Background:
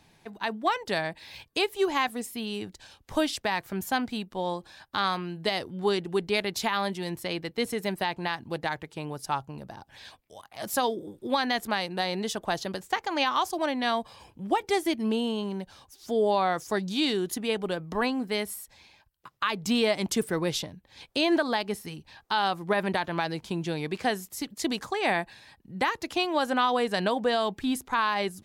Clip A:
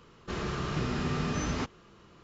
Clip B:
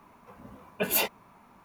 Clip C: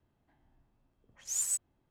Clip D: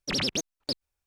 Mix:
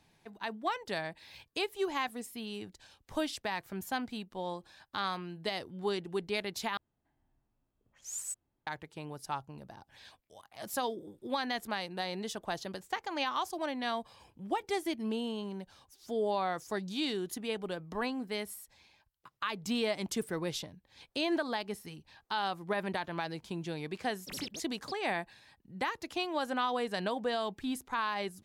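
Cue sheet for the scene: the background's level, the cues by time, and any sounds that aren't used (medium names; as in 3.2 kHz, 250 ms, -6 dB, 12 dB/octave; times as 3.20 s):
background -7.5 dB
6.77 s: replace with C -7.5 dB
24.19 s: add D -15 dB
not used: A, B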